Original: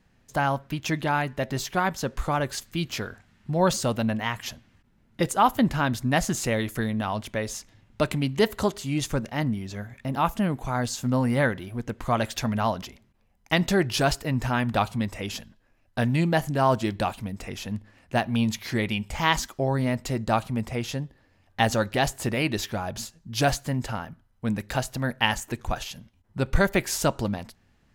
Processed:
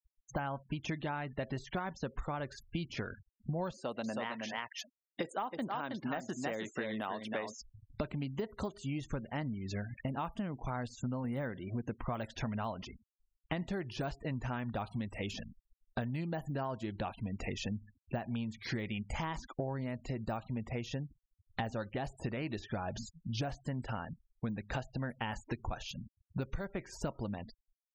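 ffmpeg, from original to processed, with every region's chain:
-filter_complex "[0:a]asettb=1/sr,asplit=3[s0][s1][s2];[s0]atrim=end=3.724[s3];[s1]atrim=start=3.72:end=7.57,asetpts=PTS-STARTPTS,afade=t=in:d=0.004:c=qsin,afade=t=out:st=3.846:d=0.004:c=qsin,highpass=290,aecho=1:1:320:0.473,atrim=end_sample=169785[s4];[s2]atrim=start=7.566[s5];[s3][s4]acrossfade=d=0.004:c1=hsin:c2=qsin[s6];[s6][s5]acrossfade=d=0.004:c1=qsin:c2=hsin,asettb=1/sr,asplit=3[s7][s8][s9];[s7]atrim=end=11.244[s10];[s8]atrim=start=11.24:end=11.96,asetpts=PTS-STARTPTS,afade=t=in:d=0.004:c=qsin,afade=t=out:st=0.716:d=0.004:c=qsin,highpass=f=130:p=1,lowshelf=f=480:g=5.5[s11];[s9]atrim=start=11.956[s12];[s10][s11]acrossfade=d=0.004:c1=hsin:c2=qsin[s13];[s13][s12]acrossfade=d=0.004:c1=qsin:c2=hsin,deesser=0.9,afftfilt=real='re*gte(hypot(re,im),0.01)':imag='im*gte(hypot(re,im),0.01)':win_size=1024:overlap=0.75,acompressor=threshold=0.0178:ratio=16,volume=1.19"

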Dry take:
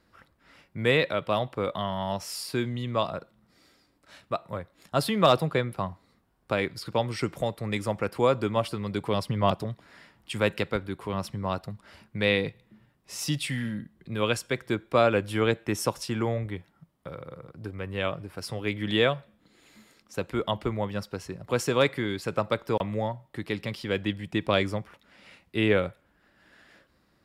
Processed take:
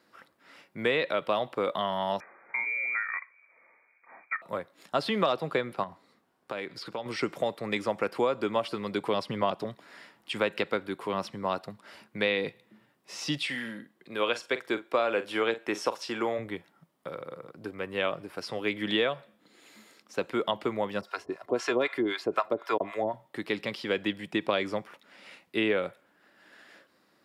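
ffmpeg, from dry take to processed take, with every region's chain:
-filter_complex "[0:a]asettb=1/sr,asplit=3[s0][s1][s2];[s0]atrim=end=2.204[s3];[s1]atrim=start=2.2:end=4.42,asetpts=PTS-STARTPTS,afade=t=in:d=0.004:c=qsin,afade=t=out:st=2.216:d=0.004:c=qsin,acompressor=threshold=0.0316:ratio=3:attack=3.2:release=140:knee=1:detection=peak,lowpass=f=2100:t=q:w=0.5098,lowpass=f=2100:t=q:w=0.6013,lowpass=f=2100:t=q:w=0.9,lowpass=f=2100:t=q:w=2.563,afreqshift=-2500[s4];[s2]atrim=start=4.416[s5];[s3][s4]acrossfade=d=0.004:c1=hsin:c2=qsin[s6];[s6][s5]acrossfade=d=0.004:c1=qsin:c2=hsin,asettb=1/sr,asplit=3[s7][s8][s9];[s7]atrim=end=5.834[s10];[s8]atrim=start=5.83:end=7.06,asetpts=PTS-STARTPTS,afade=t=in:d=0.004:c=qsin,afade=t=out:st=1.226:d=0.004:c=qsin,highshelf=f=9000:g=-5.5,acompressor=threshold=0.0224:ratio=5:attack=3.2:release=140:knee=1:detection=peak[s11];[s9]atrim=start=7.056[s12];[s10][s11]acrossfade=d=0.004:c1=hsin:c2=qsin[s13];[s13][s12]acrossfade=d=0.004:c1=qsin:c2=hsin,asettb=1/sr,asplit=3[s14][s15][s16];[s14]atrim=end=13.444[s17];[s15]atrim=start=13.44:end=16.39,asetpts=PTS-STARTPTS,afade=t=in:d=0.004:c=qsin,afade=t=out:st=2.946:d=0.004:c=qsin,bass=f=250:g=-10,treble=f=4000:g=-1,asplit=2[s18][s19];[s19]adelay=44,volume=0.2[s20];[s18][s20]amix=inputs=2:normalize=0,atrim=end_sample=130095[s21];[s16]atrim=start=16.386[s22];[s17][s21]acrossfade=d=0.004:c1=hsin:c2=qsin[s23];[s23][s22]acrossfade=d=0.004:c1=qsin:c2=hsin,asettb=1/sr,asplit=3[s24][s25][s26];[s24]atrim=end=21.014[s27];[s25]atrim=start=21.01:end=23.14,asetpts=PTS-STARTPTS,afade=t=in:d=0.004:c=qsin,afade=t=out:st=2.126:d=0.004:c=qsin,equalizer=f=1100:w=0.36:g=7.5,aecho=1:1:2.9:0.45,atrim=end_sample=93933,acrossover=split=680[s28][s29];[s28]aeval=exprs='val(0)*(1-1/2+1/2*cos(2*PI*3.9*n/s))':c=same[s30];[s29]aeval=exprs='val(0)*(1-1/2-1/2*cos(2*PI*3.9*n/s))':c=same[s31];[s30][s31]amix=inputs=2:normalize=0[s32];[s26]atrim=start=23.136[s33];[s27][s32]acrossfade=d=0.004:c1=hsin:c2=qsin[s34];[s34][s33]acrossfade=d=0.004:c1=qsin:c2=hsin,acrossover=split=5500[s35][s36];[s36]acompressor=threshold=0.00126:ratio=4:attack=1:release=60[s37];[s35][s37]amix=inputs=2:normalize=0,highpass=260,acompressor=threshold=0.0562:ratio=6,volume=1.33"

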